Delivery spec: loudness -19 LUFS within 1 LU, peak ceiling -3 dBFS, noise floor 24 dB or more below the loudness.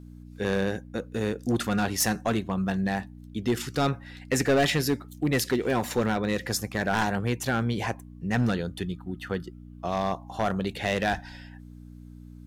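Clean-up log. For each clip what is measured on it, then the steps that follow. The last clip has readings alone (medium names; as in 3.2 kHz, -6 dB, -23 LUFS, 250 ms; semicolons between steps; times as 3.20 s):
clipped samples 1.0%; clipping level -17.5 dBFS; hum 60 Hz; highest harmonic 300 Hz; hum level -42 dBFS; loudness -28.0 LUFS; peak level -17.5 dBFS; loudness target -19.0 LUFS
-> clip repair -17.5 dBFS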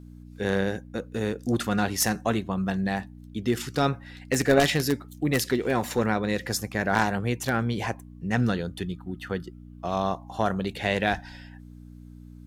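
clipped samples 0.0%; hum 60 Hz; highest harmonic 180 Hz; hum level -42 dBFS
-> de-hum 60 Hz, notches 3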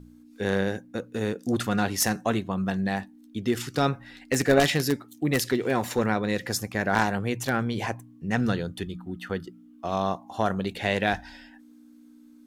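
hum not found; loudness -27.0 LUFS; peak level -8.0 dBFS; loudness target -19.0 LUFS
-> trim +8 dB; peak limiter -3 dBFS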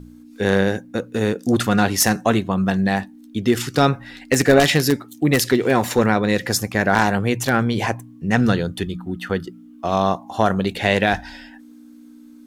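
loudness -19.5 LUFS; peak level -3.0 dBFS; noise floor -44 dBFS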